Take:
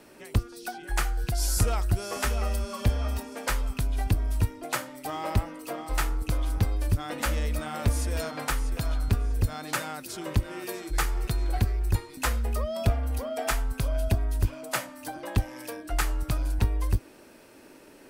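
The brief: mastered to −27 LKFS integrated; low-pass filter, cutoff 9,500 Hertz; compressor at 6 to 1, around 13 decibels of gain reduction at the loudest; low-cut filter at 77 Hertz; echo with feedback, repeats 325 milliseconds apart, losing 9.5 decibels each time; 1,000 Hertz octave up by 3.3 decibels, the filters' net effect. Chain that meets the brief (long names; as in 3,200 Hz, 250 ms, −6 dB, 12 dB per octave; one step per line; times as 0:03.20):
high-pass filter 77 Hz
low-pass filter 9,500 Hz
parametric band 1,000 Hz +4.5 dB
downward compressor 6 to 1, threshold −35 dBFS
repeating echo 325 ms, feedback 33%, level −9.5 dB
level +12.5 dB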